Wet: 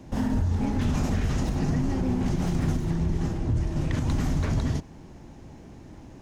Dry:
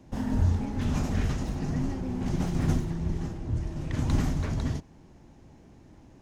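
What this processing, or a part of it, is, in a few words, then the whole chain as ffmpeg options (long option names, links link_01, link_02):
stacked limiters: -af "alimiter=limit=-18.5dB:level=0:latency=1:release=214,alimiter=level_in=0.5dB:limit=-24dB:level=0:latency=1:release=116,volume=-0.5dB,volume=7.5dB"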